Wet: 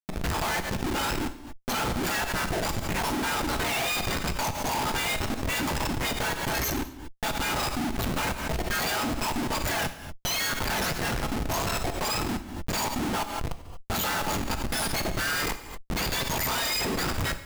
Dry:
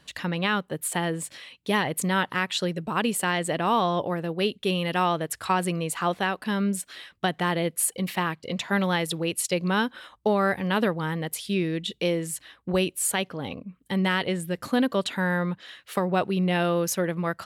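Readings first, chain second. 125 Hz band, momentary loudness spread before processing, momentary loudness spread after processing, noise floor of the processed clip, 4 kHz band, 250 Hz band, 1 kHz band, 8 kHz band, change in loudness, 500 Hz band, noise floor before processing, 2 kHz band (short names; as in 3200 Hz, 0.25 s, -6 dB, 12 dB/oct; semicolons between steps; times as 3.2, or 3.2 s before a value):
-3.0 dB, 7 LU, 6 LU, -43 dBFS, +1.5 dB, -5.5 dB, -1.5 dB, -0.5 dB, -2.0 dB, -6.5 dB, -63 dBFS, -0.5 dB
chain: spectrum mirrored in octaves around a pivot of 1600 Hz; Schmitt trigger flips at -29 dBFS; non-linear reverb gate 0.26 s falling, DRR 8.5 dB; backwards sustainer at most 57 dB/s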